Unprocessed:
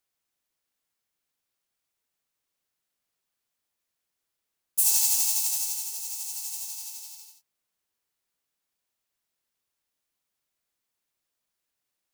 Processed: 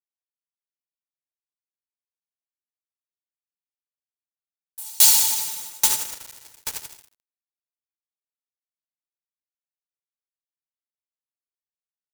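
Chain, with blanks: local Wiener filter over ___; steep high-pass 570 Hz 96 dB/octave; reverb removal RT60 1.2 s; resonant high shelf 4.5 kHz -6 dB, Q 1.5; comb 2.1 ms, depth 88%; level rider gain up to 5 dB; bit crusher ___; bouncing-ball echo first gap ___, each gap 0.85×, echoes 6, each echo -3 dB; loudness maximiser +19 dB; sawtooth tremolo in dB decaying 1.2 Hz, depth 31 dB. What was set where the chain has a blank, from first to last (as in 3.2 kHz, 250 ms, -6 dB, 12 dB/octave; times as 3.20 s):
15 samples, 6-bit, 120 ms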